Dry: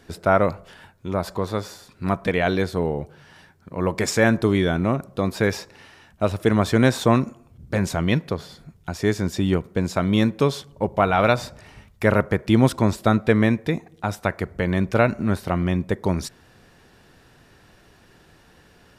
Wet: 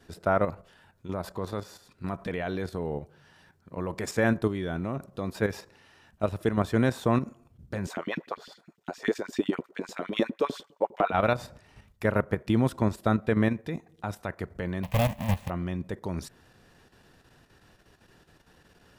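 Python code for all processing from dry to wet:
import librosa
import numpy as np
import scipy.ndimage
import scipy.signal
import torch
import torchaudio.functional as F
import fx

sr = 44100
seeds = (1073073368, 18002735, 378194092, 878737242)

y = fx.chain(x, sr, fx.filter_lfo_highpass(shape='saw_up', hz=9.9, low_hz=210.0, high_hz=3200.0, q=3.1),
    fx.peak_eq(hz=11000.0, db=-10.5, octaves=0.26), at=(7.87, 11.12))
y = fx.chain(y, sr, fx.halfwave_hold(),
    fx.fixed_phaser(hz=1400.0, stages=6),
    fx.resample_bad(factor=3, down='none', up='hold'), at=(14.83, 15.5))
y = fx.notch(y, sr, hz=2200.0, q=20.0)
y = fx.level_steps(y, sr, step_db=9)
y = fx.dynamic_eq(y, sr, hz=5300.0, q=0.81, threshold_db=-44.0, ratio=4.0, max_db=-5)
y = F.gain(torch.from_numpy(y), -4.0).numpy()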